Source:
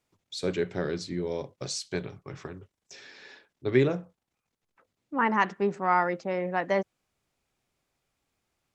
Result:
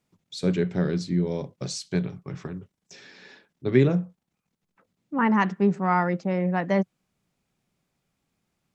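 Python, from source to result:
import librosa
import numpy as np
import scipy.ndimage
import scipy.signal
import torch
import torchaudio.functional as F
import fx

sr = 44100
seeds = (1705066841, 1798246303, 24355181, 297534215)

y = fx.peak_eq(x, sr, hz=180.0, db=12.0, octaves=0.96)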